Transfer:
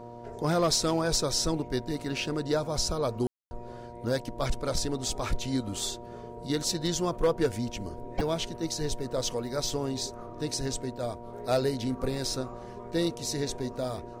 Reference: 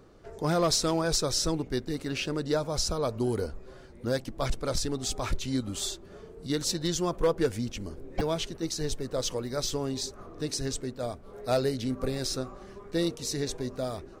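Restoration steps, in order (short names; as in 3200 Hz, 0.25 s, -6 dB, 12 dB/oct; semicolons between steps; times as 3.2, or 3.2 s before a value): de-hum 118.9 Hz, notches 6; notch 950 Hz, Q 30; room tone fill 3.27–3.51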